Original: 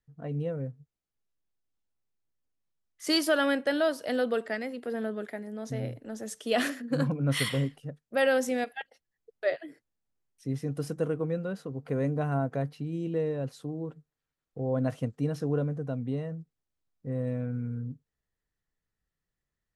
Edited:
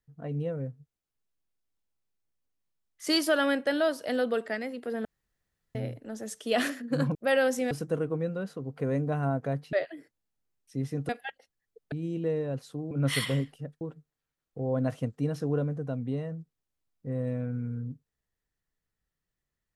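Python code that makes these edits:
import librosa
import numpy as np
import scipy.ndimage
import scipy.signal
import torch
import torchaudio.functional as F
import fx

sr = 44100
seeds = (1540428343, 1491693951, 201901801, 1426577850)

y = fx.edit(x, sr, fx.room_tone_fill(start_s=5.05, length_s=0.7),
    fx.move(start_s=7.15, length_s=0.9, to_s=13.81),
    fx.swap(start_s=8.61, length_s=0.83, other_s=10.8, other_length_s=2.02), tone=tone)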